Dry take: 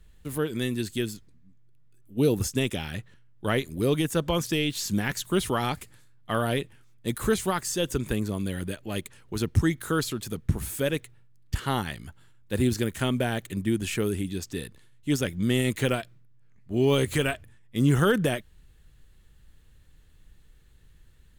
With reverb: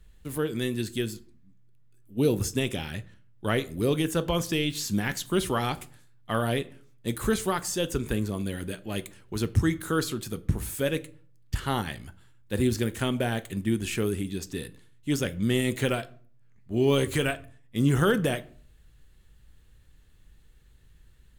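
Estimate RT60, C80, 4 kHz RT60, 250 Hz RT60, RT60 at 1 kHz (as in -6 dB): 0.45 s, 23.5 dB, 0.30 s, 0.55 s, 0.45 s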